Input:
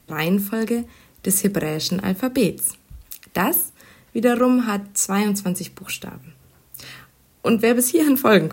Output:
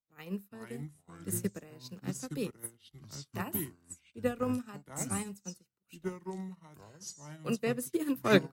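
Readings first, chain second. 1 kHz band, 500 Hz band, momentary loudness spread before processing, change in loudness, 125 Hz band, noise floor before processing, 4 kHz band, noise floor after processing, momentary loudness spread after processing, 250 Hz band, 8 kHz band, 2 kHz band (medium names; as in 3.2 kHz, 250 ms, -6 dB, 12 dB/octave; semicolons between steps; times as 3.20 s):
-16.0 dB, -14.0 dB, 19 LU, -16.0 dB, -12.0 dB, -57 dBFS, -15.0 dB, -76 dBFS, 15 LU, -15.5 dB, -17.0 dB, -13.5 dB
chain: ever faster or slower copies 383 ms, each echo -5 st, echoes 2; upward expansion 2.5:1, over -36 dBFS; trim -8.5 dB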